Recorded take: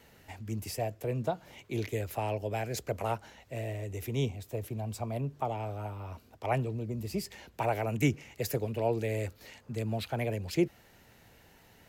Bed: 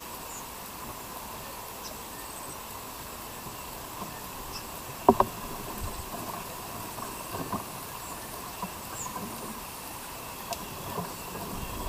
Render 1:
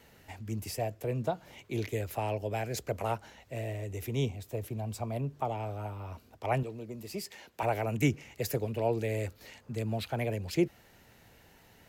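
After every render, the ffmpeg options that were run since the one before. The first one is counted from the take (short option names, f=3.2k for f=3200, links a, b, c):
-filter_complex "[0:a]asettb=1/sr,asplit=3[a][b][c];[a]atrim=end=6.634[d];[b]atrim=start=6.63:end=7.63,asetpts=PTS-STARTPTS,afade=t=in:d=0.004:c=qsin,afade=t=out:st=0.996:d=0.004:c=qsin,highpass=f=370:p=1[e];[c]atrim=start=7.626[f];[d][e]acrossfade=d=0.004:c1=hsin:c2=qsin[g];[g][f]acrossfade=d=0.004:c1=qsin:c2=hsin"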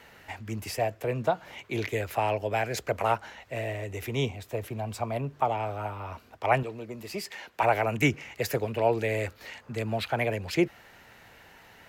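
-af "equalizer=f=1.5k:t=o:w=2.9:g=10.5"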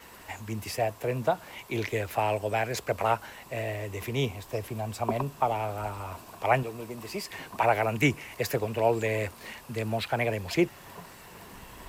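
-filter_complex "[1:a]volume=-11.5dB[a];[0:a][a]amix=inputs=2:normalize=0"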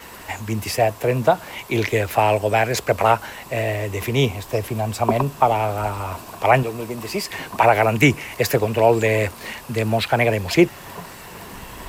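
-af "volume=10dB,alimiter=limit=-3dB:level=0:latency=1"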